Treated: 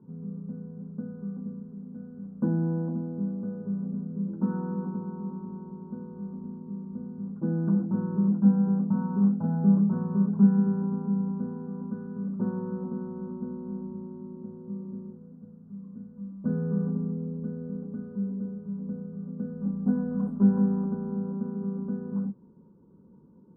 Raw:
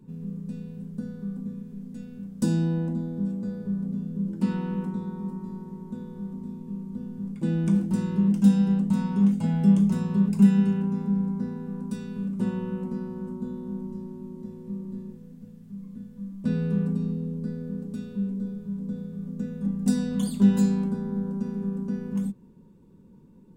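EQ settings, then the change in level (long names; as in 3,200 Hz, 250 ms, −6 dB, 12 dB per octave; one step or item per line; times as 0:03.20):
high-pass filter 40 Hz
elliptic low-pass filter 1,400 Hz, stop band 40 dB
low-shelf EQ 99 Hz −7 dB
0.0 dB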